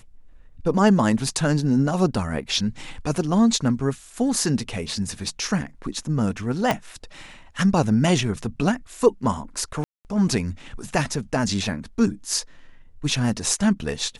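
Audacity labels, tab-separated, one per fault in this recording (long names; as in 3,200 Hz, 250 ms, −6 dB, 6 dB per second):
6.710000	6.710000	click −7 dBFS
9.840000	10.050000	drop-out 209 ms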